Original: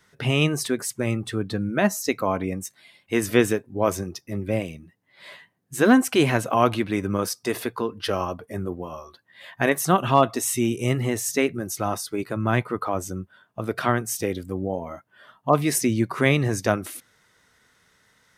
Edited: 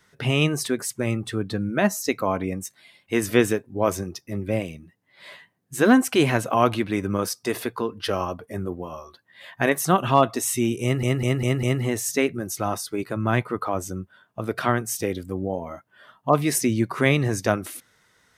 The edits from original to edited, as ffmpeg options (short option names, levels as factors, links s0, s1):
-filter_complex "[0:a]asplit=5[s0][s1][s2][s3][s4];[s0]atrim=end=11.032[s5];[s1]atrim=start=10.828:end=11.032[s6];[s2]atrim=start=10.828:end=11.032[s7];[s3]atrim=start=10.828:end=11.032[s8];[s4]atrim=start=10.828[s9];[s5][s6]acrossfade=d=0.004:c1=hsin:c2=hsin[s10];[s10][s7]acrossfade=d=0.004:c1=hsin:c2=hsin[s11];[s11][s8]acrossfade=d=0.004:c1=hsin:c2=hsin[s12];[s12][s9]acrossfade=d=0.004:c1=hsin:c2=hsin"